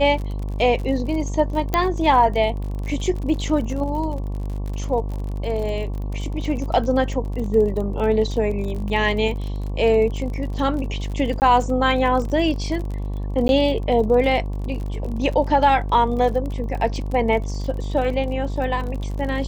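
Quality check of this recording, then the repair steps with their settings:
buzz 50 Hz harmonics 23 -26 dBFS
crackle 41 per s -29 dBFS
1.74 s: pop -6 dBFS
11.40–11.42 s: dropout 19 ms
13.48–13.49 s: dropout 11 ms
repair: de-click; de-hum 50 Hz, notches 23; interpolate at 11.40 s, 19 ms; interpolate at 13.48 s, 11 ms

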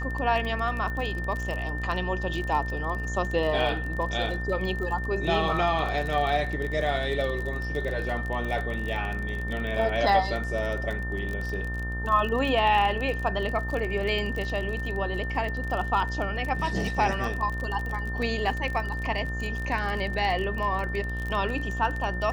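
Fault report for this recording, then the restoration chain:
buzz 60 Hz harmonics 26 -32 dBFS
crackle 31 per s -30 dBFS
whine 1.8 kHz -34 dBFS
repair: de-click; band-stop 1.8 kHz, Q 30; de-hum 60 Hz, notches 26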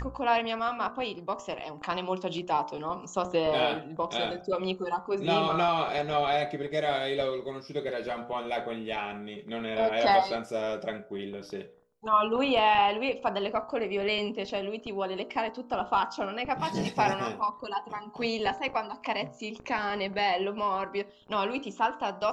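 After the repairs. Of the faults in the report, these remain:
nothing left

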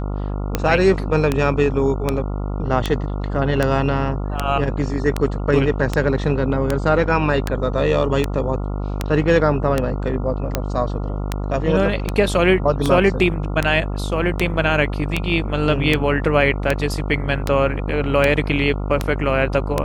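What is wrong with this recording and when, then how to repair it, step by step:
buzz 50 Hz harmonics 28 -24 dBFS
tick 78 rpm -4 dBFS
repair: de-click; de-hum 50 Hz, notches 28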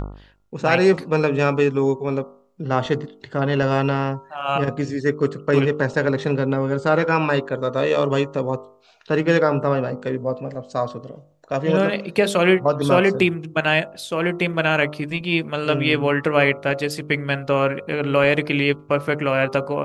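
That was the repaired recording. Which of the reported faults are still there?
nothing left

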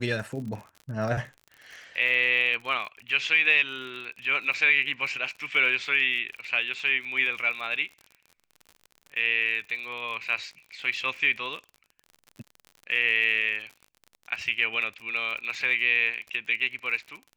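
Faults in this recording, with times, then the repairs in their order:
crackle 50 per s -36 dBFS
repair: de-click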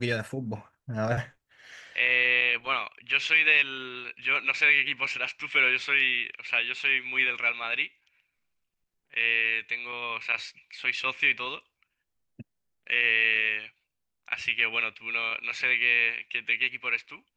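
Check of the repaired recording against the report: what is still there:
nothing left

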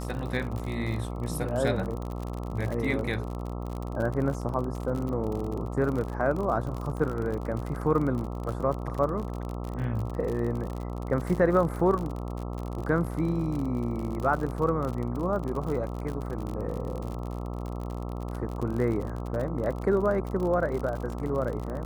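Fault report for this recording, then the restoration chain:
buzz 60 Hz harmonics 22 -34 dBFS
crackle 52 per s -32 dBFS
2.99 s: dropout 2.6 ms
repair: de-click; de-hum 60 Hz, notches 22; interpolate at 2.99 s, 2.6 ms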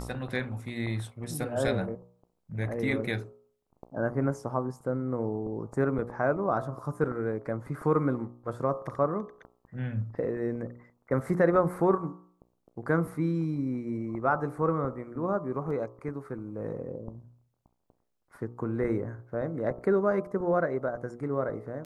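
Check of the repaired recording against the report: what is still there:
nothing left

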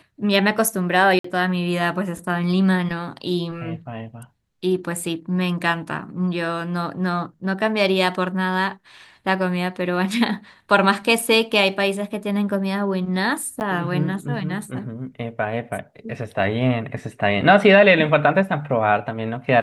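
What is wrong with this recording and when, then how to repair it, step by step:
1.19–1.24 s: dropout 54 ms
13.60–13.61 s: dropout 9.6 ms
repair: interpolate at 1.19 s, 54 ms; interpolate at 13.60 s, 9.6 ms

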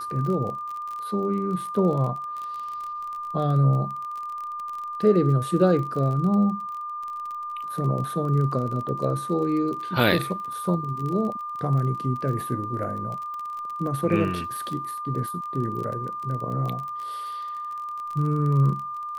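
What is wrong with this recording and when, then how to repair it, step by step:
crackle 28 per s -31 dBFS
whine 1.2 kHz -30 dBFS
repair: de-click; band-stop 1.2 kHz, Q 30

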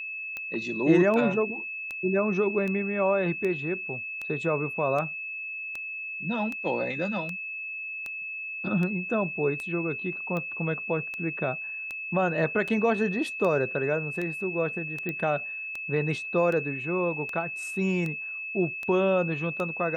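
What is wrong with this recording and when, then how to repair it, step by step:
tick 78 rpm -21 dBFS
whine 2.6 kHz -33 dBFS
15.09 s: pop -19 dBFS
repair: de-click; band-stop 2.6 kHz, Q 30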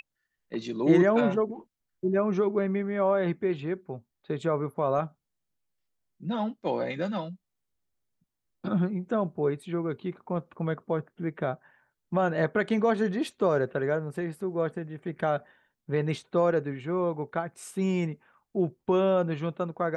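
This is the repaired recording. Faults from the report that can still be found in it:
nothing left

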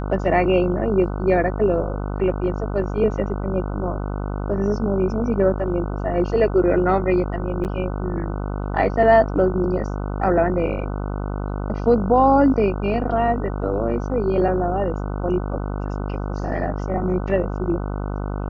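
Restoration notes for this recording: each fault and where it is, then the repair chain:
buzz 50 Hz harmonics 30 -26 dBFS
7.64–7.65 s: dropout 8.7 ms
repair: de-hum 50 Hz, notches 30; interpolate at 7.64 s, 8.7 ms

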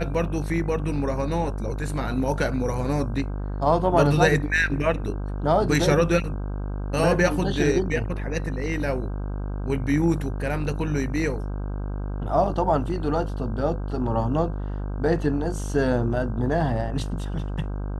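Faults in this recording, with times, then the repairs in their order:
buzz 50 Hz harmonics 32 -29 dBFS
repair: de-hum 50 Hz, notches 32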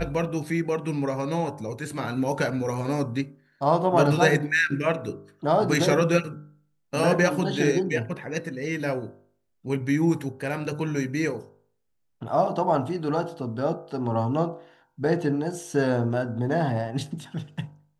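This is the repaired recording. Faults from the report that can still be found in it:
nothing left

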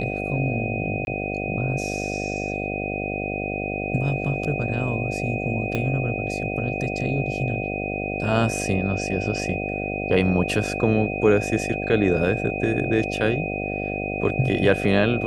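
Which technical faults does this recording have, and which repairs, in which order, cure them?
buzz 50 Hz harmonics 15 -29 dBFS
whine 2.5 kHz -30 dBFS
1.05–1.07 s: dropout 21 ms
5.75 s: pop -12 dBFS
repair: de-click; band-stop 2.5 kHz, Q 30; de-hum 50 Hz, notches 15; interpolate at 1.05 s, 21 ms

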